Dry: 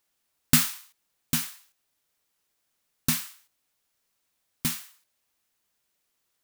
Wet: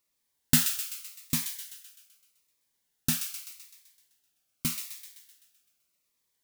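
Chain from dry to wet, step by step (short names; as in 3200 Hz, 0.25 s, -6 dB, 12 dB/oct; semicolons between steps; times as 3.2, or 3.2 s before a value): thin delay 0.128 s, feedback 56%, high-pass 1900 Hz, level -7.5 dB; cascading phaser falling 0.83 Hz; gain -2 dB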